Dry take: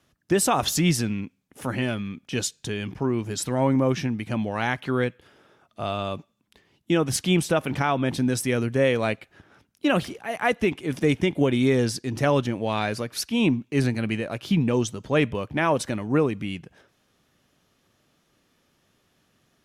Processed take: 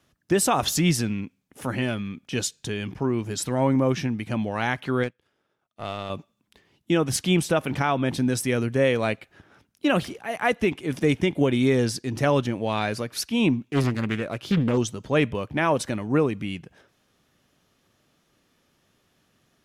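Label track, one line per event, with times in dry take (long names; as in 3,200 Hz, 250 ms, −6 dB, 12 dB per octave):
5.030000	6.100000	power curve on the samples exponent 1.4
13.650000	14.780000	highs frequency-modulated by the lows depth 0.51 ms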